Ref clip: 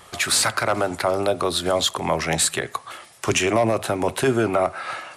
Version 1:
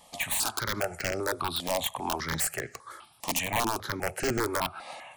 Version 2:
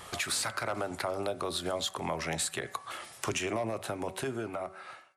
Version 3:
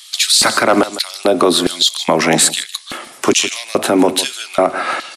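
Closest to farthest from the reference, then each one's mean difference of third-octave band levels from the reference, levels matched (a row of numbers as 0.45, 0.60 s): 2, 1, 3; 3.0, 6.5, 8.5 dB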